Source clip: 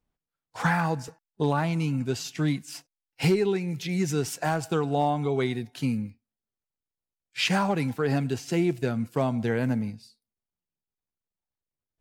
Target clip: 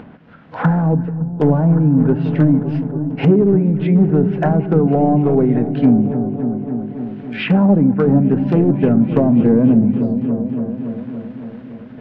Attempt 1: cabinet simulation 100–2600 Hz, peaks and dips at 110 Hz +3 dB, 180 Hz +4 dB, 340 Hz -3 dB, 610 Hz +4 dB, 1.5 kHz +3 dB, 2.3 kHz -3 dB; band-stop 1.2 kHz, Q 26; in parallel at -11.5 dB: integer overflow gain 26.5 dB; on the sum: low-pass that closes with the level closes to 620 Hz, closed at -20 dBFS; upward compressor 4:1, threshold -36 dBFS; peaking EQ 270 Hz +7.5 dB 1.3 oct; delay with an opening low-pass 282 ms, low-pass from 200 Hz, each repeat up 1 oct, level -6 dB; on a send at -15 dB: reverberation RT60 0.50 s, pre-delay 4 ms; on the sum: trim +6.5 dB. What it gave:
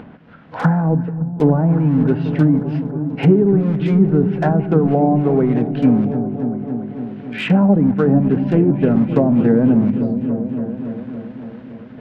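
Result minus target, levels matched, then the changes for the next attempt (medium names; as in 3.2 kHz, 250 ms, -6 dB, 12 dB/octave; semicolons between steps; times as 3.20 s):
integer overflow: distortion +27 dB
change: integer overflow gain 19 dB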